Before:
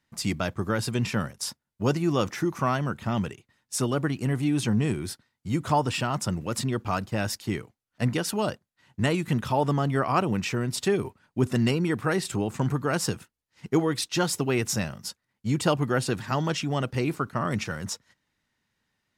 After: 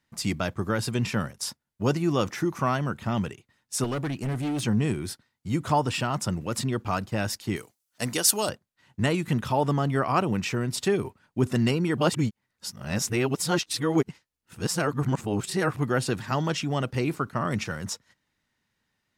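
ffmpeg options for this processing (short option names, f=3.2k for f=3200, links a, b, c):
-filter_complex "[0:a]asettb=1/sr,asplit=3[a][b][c];[a]atrim=end=3.844[d];[b]atrim=start=3.84:end=4.64,asetpts=PTS-STARTPTS,afade=t=in:d=0.004:c=qsin,afade=t=out:st=0.796:d=0.004:c=qsin,volume=25.5dB,asoftclip=hard,volume=-25.5dB[e];[c]atrim=start=4.636[f];[d][e]acrossfade=d=0.004:c1=hsin:c2=qsin[g];[g][f]acrossfade=d=0.004:c1=qsin:c2=hsin,asettb=1/sr,asplit=3[h][i][j];[h]atrim=end=7.564[k];[i]atrim=start=7.56:end=8.49,asetpts=PTS-STARTPTS,afade=t=in:d=0.004:c=qsin,afade=t=out:st=0.926:d=0.004:c=qsin,bass=f=250:g=-9,treble=f=4k:g=14[l];[j]atrim=start=8.486[m];[k][l]acrossfade=d=0.004:c1=hsin:c2=qsin[n];[n][m]acrossfade=d=0.004:c1=qsin:c2=hsin,asplit=3[o][p][q];[o]atrim=end=11.982[r];[p]atrim=start=11.978:end=15.772,asetpts=PTS-STARTPTS,areverse[s];[q]atrim=start=15.768[t];[r][s]acrossfade=d=0.004:c1=hsin:c2=hsin[u];[u][t]acrossfade=d=0.004:c1=hsin:c2=hsin"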